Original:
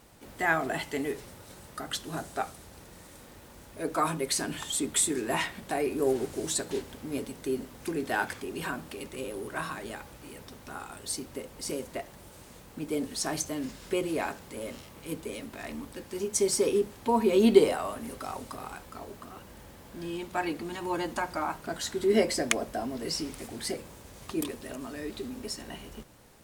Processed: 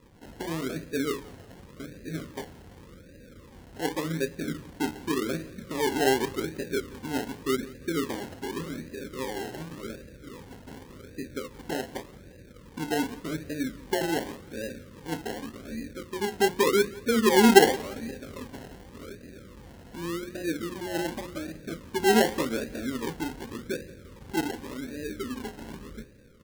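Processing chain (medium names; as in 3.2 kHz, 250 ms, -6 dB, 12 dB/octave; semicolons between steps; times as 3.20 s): elliptic low-pass 540 Hz, stop band 40 dB; hum notches 60/120/180/240/300/360/420 Hz; decimation with a swept rate 29×, swing 60% 0.87 Hz; on a send: feedback delay 174 ms, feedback 42%, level -21.5 dB; on the sum: trim +4.5 dB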